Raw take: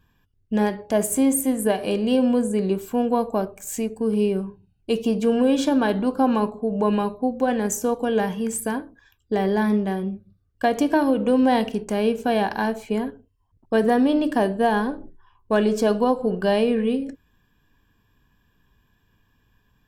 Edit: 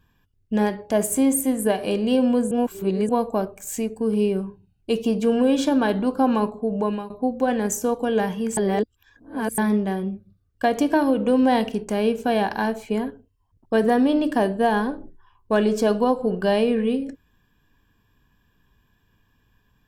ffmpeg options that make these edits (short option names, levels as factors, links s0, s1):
-filter_complex "[0:a]asplit=6[s0][s1][s2][s3][s4][s5];[s0]atrim=end=2.512[s6];[s1]atrim=start=2.508:end=3.092,asetpts=PTS-STARTPTS,areverse[s7];[s2]atrim=start=3.088:end=7.1,asetpts=PTS-STARTPTS,afade=t=out:st=3.652:d=0.36:silence=0.16788[s8];[s3]atrim=start=7.1:end=8.572,asetpts=PTS-STARTPTS,afade=t=in:d=0.004:c=hsin:silence=0.16788[s9];[s4]atrim=start=8.568:end=9.582,asetpts=PTS-STARTPTS,areverse[s10];[s5]atrim=start=9.578[s11];[s6][s7]acrossfade=d=0.004:c1=hsin:c2=hsin[s12];[s8][s9]concat=n=2:v=0:a=1[s13];[s12][s13]acrossfade=d=0.004:c1=hsin:c2=hsin[s14];[s14][s10]acrossfade=d=0.004:c1=hsin:c2=hsin[s15];[s15][s11]acrossfade=d=0.004:c1=hsin:c2=hsin"